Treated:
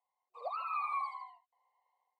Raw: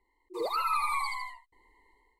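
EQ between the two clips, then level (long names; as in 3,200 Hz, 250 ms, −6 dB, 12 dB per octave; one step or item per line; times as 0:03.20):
formant filter a
elliptic high-pass filter 530 Hz, stop band 40 dB
+3.0 dB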